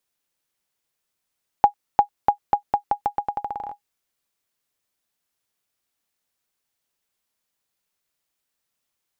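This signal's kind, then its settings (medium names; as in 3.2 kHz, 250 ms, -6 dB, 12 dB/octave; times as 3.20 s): bouncing ball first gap 0.35 s, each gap 0.84, 821 Hz, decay 99 ms -2.5 dBFS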